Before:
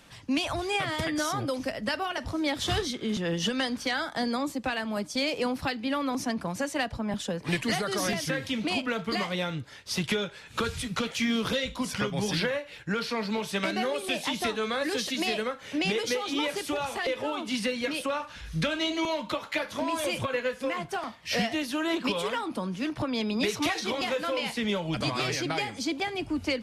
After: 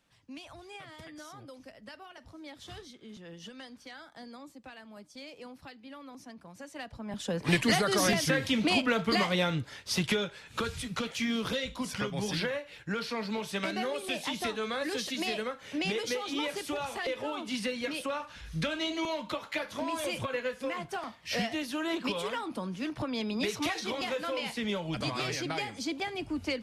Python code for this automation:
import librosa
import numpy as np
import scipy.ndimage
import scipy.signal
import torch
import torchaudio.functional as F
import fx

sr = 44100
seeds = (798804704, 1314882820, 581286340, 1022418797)

y = fx.gain(x, sr, db=fx.line((6.46, -18.0), (7.1, -8.0), (7.41, 2.5), (9.56, 2.5), (10.69, -4.0)))